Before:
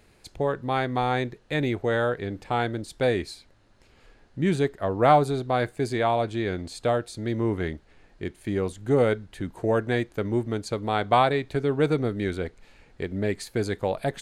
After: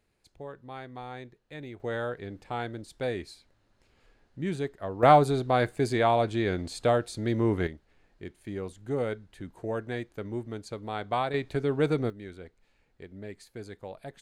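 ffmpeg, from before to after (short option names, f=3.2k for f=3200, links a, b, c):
-af "asetnsamples=n=441:p=0,asendcmd='1.8 volume volume -8dB;5.03 volume volume 0dB;7.67 volume volume -9dB;11.34 volume volume -3dB;12.1 volume volume -15dB',volume=-16dB"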